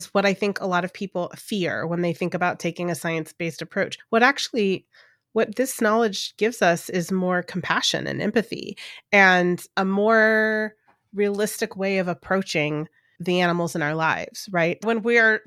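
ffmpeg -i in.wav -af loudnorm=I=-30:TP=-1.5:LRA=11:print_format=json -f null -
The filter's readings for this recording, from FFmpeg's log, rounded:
"input_i" : "-22.4",
"input_tp" : "-3.0",
"input_lra" : "4.0",
"input_thresh" : "-32.6",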